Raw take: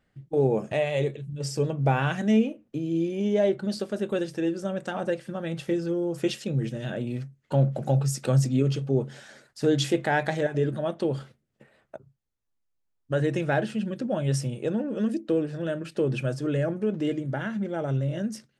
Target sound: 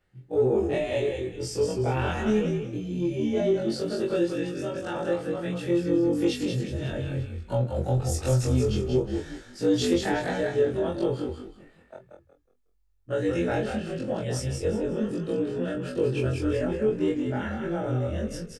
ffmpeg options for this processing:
ffmpeg -i in.wav -filter_complex "[0:a]afftfilt=real='re':imag='-im':win_size=2048:overlap=0.75,acrossover=split=430|3000[link_01][link_02][link_03];[link_02]acompressor=threshold=-31dB:ratio=8[link_04];[link_01][link_04][link_03]amix=inputs=3:normalize=0,asplit=2[link_05][link_06];[link_06]asoftclip=type=tanh:threshold=-23.5dB,volume=-7dB[link_07];[link_05][link_07]amix=inputs=2:normalize=0,asplit=2[link_08][link_09];[link_09]adelay=21,volume=-5dB[link_10];[link_08][link_10]amix=inputs=2:normalize=0,asplit=5[link_11][link_12][link_13][link_14][link_15];[link_12]adelay=183,afreqshift=-46,volume=-5dB[link_16];[link_13]adelay=366,afreqshift=-92,volume=-15.5dB[link_17];[link_14]adelay=549,afreqshift=-138,volume=-25.9dB[link_18];[link_15]adelay=732,afreqshift=-184,volume=-36.4dB[link_19];[link_11][link_16][link_17][link_18][link_19]amix=inputs=5:normalize=0" out.wav

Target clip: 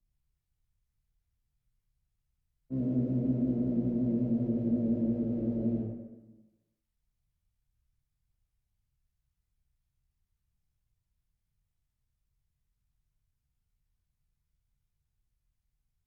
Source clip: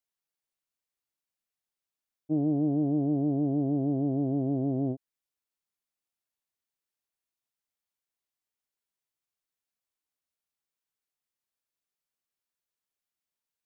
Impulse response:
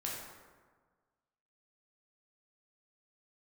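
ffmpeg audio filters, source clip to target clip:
-filter_complex "[0:a]acrossover=split=120|240|480[link_01][link_02][link_03][link_04];[link_01]acompressor=mode=upward:threshold=-46dB:ratio=2.5[link_05];[link_02]aeval=exprs='sgn(val(0))*max(abs(val(0))-0.00158,0)':channel_layout=same[link_06];[link_05][link_06][link_03][link_04]amix=inputs=4:normalize=0,asetrate=37485,aresample=44100,tremolo=f=65:d=0.519[link_07];[1:a]atrim=start_sample=2205,asetrate=57330,aresample=44100[link_08];[link_07][link_08]afir=irnorm=-1:irlink=0"

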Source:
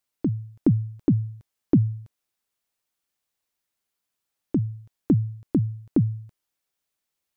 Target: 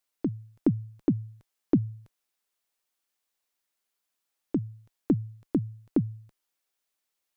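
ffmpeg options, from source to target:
ffmpeg -i in.wav -af "equalizer=frequency=82:width=0.52:gain=-11" out.wav

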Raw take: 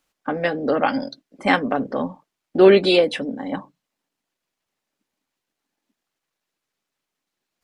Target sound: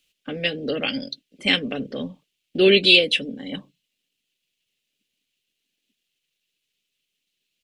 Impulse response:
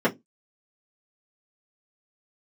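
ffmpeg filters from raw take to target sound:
-af "firequalizer=gain_entry='entry(160,0);entry(310,-5);entry(440,-2);entry(870,-19);entry(2800,13);entry(5000,4)':delay=0.05:min_phase=1,volume=-1dB"

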